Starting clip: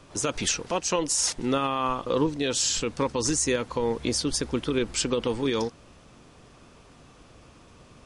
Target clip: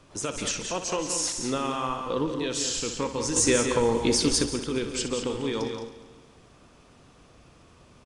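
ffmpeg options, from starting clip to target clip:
-filter_complex "[0:a]asplit=2[a][b];[b]aecho=0:1:61.22|174.9|209.9:0.282|0.398|0.282[c];[a][c]amix=inputs=2:normalize=0,asettb=1/sr,asplit=3[d][e][f];[d]atrim=end=3.364[g];[e]atrim=start=3.36:end=4.46,asetpts=PTS-STARTPTS,afade=t=in:d=0.004:c=qsin,afade=t=out:st=1.096:d=0.004:c=qsin,acontrast=74[h];[f]atrim=start=4.456[i];[g][h]acrossfade=d=0.004:c1=hsin:c2=qsin[j];[j][i]acrossfade=d=0.004:c1=qsin:c2=hsin,asplit=2[k][l];[l]aecho=0:1:138|276|414|552|690|828:0.188|0.105|0.0591|0.0331|0.0185|0.0104[m];[k][m]amix=inputs=2:normalize=0,volume=-4dB"

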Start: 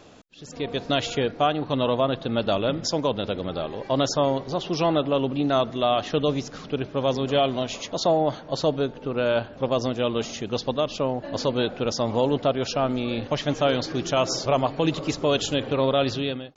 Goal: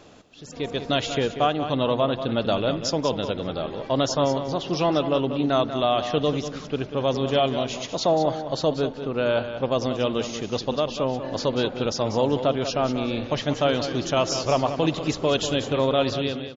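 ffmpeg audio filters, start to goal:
-af "aecho=1:1:190|380|570:0.316|0.0759|0.0182"

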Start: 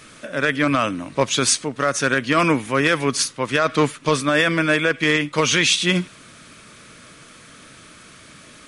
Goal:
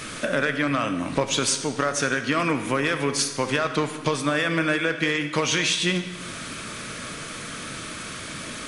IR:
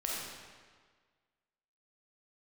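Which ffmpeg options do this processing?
-filter_complex "[0:a]acompressor=threshold=-31dB:ratio=6,asplit=2[a][b];[1:a]atrim=start_sample=2205,asetrate=52920,aresample=44100[c];[b][c]afir=irnorm=-1:irlink=0,volume=-7dB[d];[a][d]amix=inputs=2:normalize=0,volume=7dB"

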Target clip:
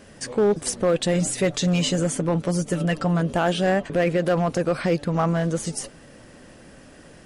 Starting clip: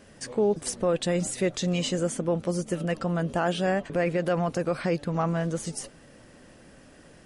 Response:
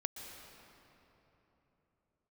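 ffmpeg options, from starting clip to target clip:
-filter_complex "[0:a]asettb=1/sr,asplit=3[a][b][c];[a]atrim=end=1.134[d];[b]atrim=start=1.13:end=3.21,asetpts=PTS-STARTPTS,afade=t=in:d=0.004:c=qsin,afade=t=out:st=2.076:d=0.004:c=qsin,aecho=1:1:6.9:0.47,atrim=end_sample=91728[e];[c]atrim=start=3.206[f];[d][e]acrossfade=d=0.004:c1=hsin:c2=qsin[g];[g][f]acrossfade=d=0.004:c1=qsin:c2=hsin,asoftclip=type=hard:threshold=-19dB,volume=5dB"

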